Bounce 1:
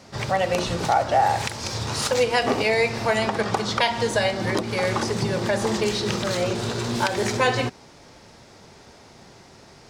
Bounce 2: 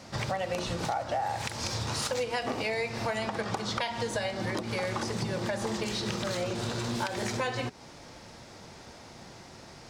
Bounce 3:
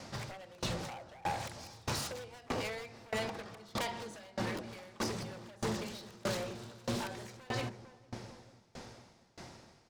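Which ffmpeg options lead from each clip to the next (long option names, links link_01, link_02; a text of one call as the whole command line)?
ffmpeg -i in.wav -af "bandreject=frequency=410:width=12,acompressor=threshold=-30dB:ratio=4" out.wav
ffmpeg -i in.wav -filter_complex "[0:a]aeval=exprs='0.0398*(abs(mod(val(0)/0.0398+3,4)-2)-1)':channel_layout=same,asplit=2[link_01][link_02];[link_02]adelay=451,lowpass=frequency=850:poles=1,volume=-6dB,asplit=2[link_03][link_04];[link_04]adelay=451,lowpass=frequency=850:poles=1,volume=0.55,asplit=2[link_05][link_06];[link_06]adelay=451,lowpass=frequency=850:poles=1,volume=0.55,asplit=2[link_07][link_08];[link_08]adelay=451,lowpass=frequency=850:poles=1,volume=0.55,asplit=2[link_09][link_10];[link_10]adelay=451,lowpass=frequency=850:poles=1,volume=0.55,asplit=2[link_11][link_12];[link_12]adelay=451,lowpass=frequency=850:poles=1,volume=0.55,asplit=2[link_13][link_14];[link_14]adelay=451,lowpass=frequency=850:poles=1,volume=0.55[link_15];[link_01][link_03][link_05][link_07][link_09][link_11][link_13][link_15]amix=inputs=8:normalize=0,aeval=exprs='val(0)*pow(10,-26*if(lt(mod(1.6*n/s,1),2*abs(1.6)/1000),1-mod(1.6*n/s,1)/(2*abs(1.6)/1000),(mod(1.6*n/s,1)-2*abs(1.6)/1000)/(1-2*abs(1.6)/1000))/20)':channel_layout=same,volume=1dB" out.wav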